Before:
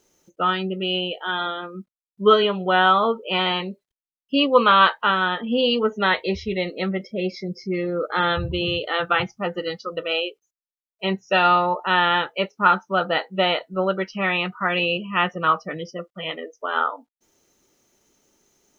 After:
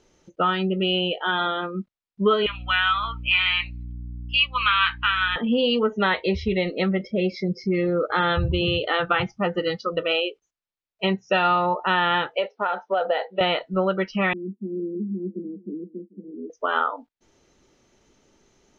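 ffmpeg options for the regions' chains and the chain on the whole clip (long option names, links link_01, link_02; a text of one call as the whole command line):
ffmpeg -i in.wav -filter_complex "[0:a]asettb=1/sr,asplit=3[link_01][link_02][link_03];[link_01]atrim=end=2.464[link_04];[link_02]atrim=start=2.46:end=5.36,asetpts=PTS-STARTPTS,afade=type=in:duration=0.004:curve=qsin,afade=type=out:start_time=2.896:duration=0.004:curve=qsin,highpass=frequency=1300:width=0.5412,highpass=frequency=1300:width=1.3066,equalizer=frequency=2400:width_type=o:width=0.43:gain=12,aeval=exprs='val(0)+0.00708*(sin(2*PI*60*n/s)+sin(2*PI*2*60*n/s)/2+sin(2*PI*3*60*n/s)/3+sin(2*PI*4*60*n/s)/4+sin(2*PI*5*60*n/s)/5)':channel_layout=same[link_05];[link_03]atrim=start=5.356[link_06];[link_04][link_05]acrossfade=duration=0.004:curve1=hsin:curve2=qsin[link_07];[link_07][link_06]acrossfade=duration=0.004:curve1=qsin:curve2=hsin,asettb=1/sr,asplit=3[link_08][link_09][link_10];[link_08]atrim=end=12.364[link_11];[link_09]atrim=start=12.36:end=13.41,asetpts=PTS-STARTPTS,afade=type=in:duration=0.004:curve=qsin,afade=type=out:start_time=1.046:duration=0.004:curve=qsin,acompressor=threshold=-21dB:ratio=6:attack=3.2:release=140:knee=1:detection=peak,highpass=frequency=310:width=0.5412,highpass=frequency=310:width=1.3066,equalizer=frequency=330:width_type=q:width=4:gain=-10,equalizer=frequency=490:width_type=q:width=4:gain=7,equalizer=frequency=710:width_type=q:width=4:gain=7,equalizer=frequency=1200:width_type=q:width=4:gain=-7,equalizer=frequency=2500:width_type=q:width=4:gain=-3,lowpass=frequency=4400:width=0.5412,lowpass=frequency=4400:width=1.3066[link_12];[link_10]atrim=start=13.406[link_13];[link_11][link_12]acrossfade=duration=0.004:curve1=hsin:curve2=qsin[link_14];[link_14][link_13]acrossfade=duration=0.004:curve1=qsin:curve2=hsin,asettb=1/sr,asplit=3[link_15][link_16][link_17];[link_15]atrim=end=14.334[link_18];[link_16]atrim=start=14.33:end=16.5,asetpts=PTS-STARTPTS,afade=type=in:duration=0.004:curve=qsin,afade=type=out:start_time=2.166:duration=0.004:curve=qsin,asuperpass=centerf=290:order=12:qfactor=1.3,aecho=1:1:1:0.38,atrim=end_sample=95697,aecho=1:1:439:0.0944,atrim=end_sample=95697[link_19];[link_17]atrim=start=16.496[link_20];[link_18][link_19]acrossfade=duration=0.004:curve1=hsin:curve2=qsin[link_21];[link_21][link_20]acrossfade=duration=0.004:curve1=qsin:curve2=hsin,lowpass=4500,lowshelf=frequency=94:gain=9.5,acompressor=threshold=-25dB:ratio=2.5,volume=4.5dB" out.wav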